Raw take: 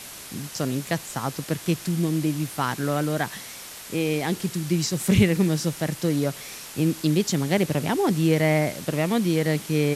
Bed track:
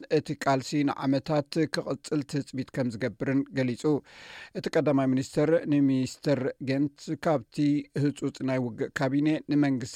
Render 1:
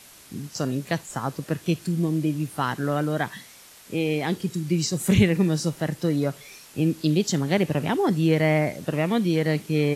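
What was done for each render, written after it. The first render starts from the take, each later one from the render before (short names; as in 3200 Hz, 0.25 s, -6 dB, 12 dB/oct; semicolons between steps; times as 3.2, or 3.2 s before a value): noise print and reduce 9 dB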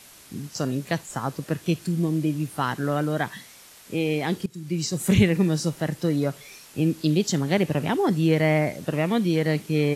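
4.46–5.17 fade in equal-power, from -17 dB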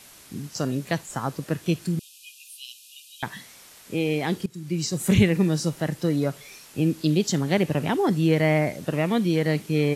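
1.99–3.23 brick-wall FIR high-pass 2400 Hz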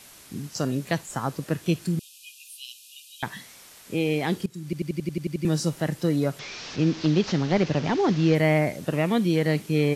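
4.64 stutter in place 0.09 s, 9 plays; 6.39–8.35 delta modulation 32 kbps, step -31 dBFS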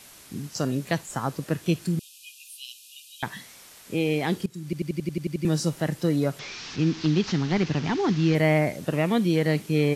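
6.52–8.35 bell 570 Hz -10 dB 0.63 oct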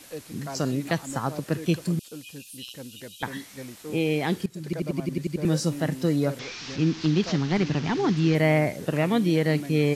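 add bed track -12.5 dB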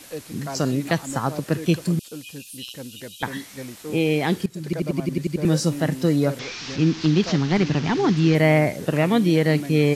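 gain +4 dB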